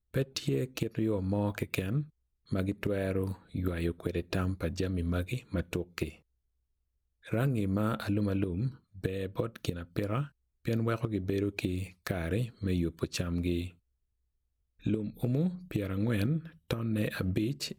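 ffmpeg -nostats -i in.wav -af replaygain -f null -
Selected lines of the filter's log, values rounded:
track_gain = +15.1 dB
track_peak = 0.139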